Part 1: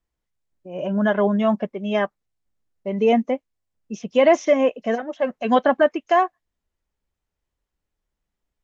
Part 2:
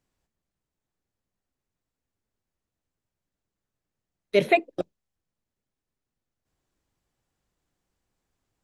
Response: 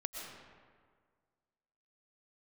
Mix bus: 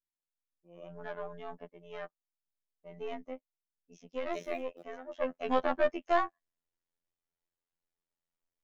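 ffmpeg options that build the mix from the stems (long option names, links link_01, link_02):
-filter_complex "[0:a]aeval=exprs='(tanh(3.98*val(0)+0.6)-tanh(0.6))/3.98':channel_layout=same,volume=-4.5dB,afade=type=in:start_time=4.95:duration=0.24:silence=0.334965[link_01];[1:a]acrusher=bits=9:dc=4:mix=0:aa=0.000001,tremolo=f=27:d=0.824,volume=-14dB[link_02];[link_01][link_02]amix=inputs=2:normalize=0,equalizer=frequency=68:width_type=o:width=2:gain=-12,afftfilt=real='hypot(re,im)*cos(PI*b)':imag='0':win_size=2048:overlap=0.75"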